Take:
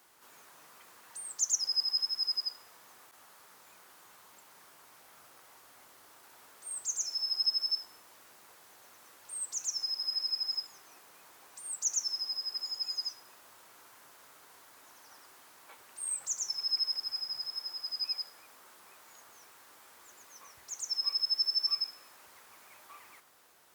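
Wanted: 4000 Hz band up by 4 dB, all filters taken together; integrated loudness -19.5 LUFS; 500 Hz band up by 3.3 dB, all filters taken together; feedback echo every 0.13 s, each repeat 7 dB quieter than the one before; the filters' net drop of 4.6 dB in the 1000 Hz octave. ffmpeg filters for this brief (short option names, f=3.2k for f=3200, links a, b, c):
-af "equalizer=f=500:t=o:g=6.5,equalizer=f=1k:t=o:g=-8,equalizer=f=4k:t=o:g=6.5,aecho=1:1:130|260|390|520|650:0.447|0.201|0.0905|0.0407|0.0183,volume=7.5dB"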